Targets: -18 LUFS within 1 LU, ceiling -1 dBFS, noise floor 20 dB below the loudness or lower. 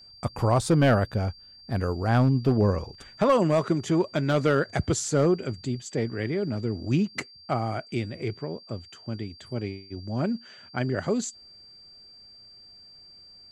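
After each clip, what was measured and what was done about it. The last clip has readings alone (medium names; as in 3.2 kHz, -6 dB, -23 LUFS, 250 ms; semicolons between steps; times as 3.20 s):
clipped samples 0.3%; clipping level -13.5 dBFS; steady tone 4.7 kHz; tone level -48 dBFS; loudness -26.5 LUFS; peak level -13.5 dBFS; loudness target -18.0 LUFS
-> clip repair -13.5 dBFS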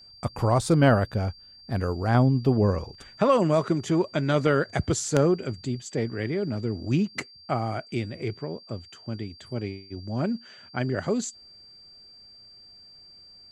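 clipped samples 0.0%; steady tone 4.7 kHz; tone level -48 dBFS
-> band-stop 4.7 kHz, Q 30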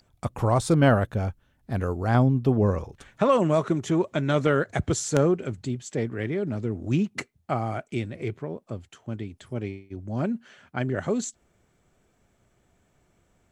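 steady tone not found; loudness -26.0 LUFS; peak level -4.5 dBFS; loudness target -18.0 LUFS
-> trim +8 dB; peak limiter -1 dBFS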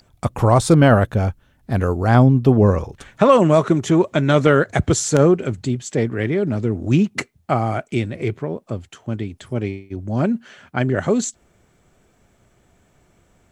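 loudness -18.5 LUFS; peak level -1.0 dBFS; noise floor -59 dBFS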